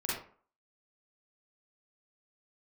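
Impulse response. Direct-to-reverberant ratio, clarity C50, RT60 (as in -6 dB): -7.5 dB, -0.5 dB, 0.45 s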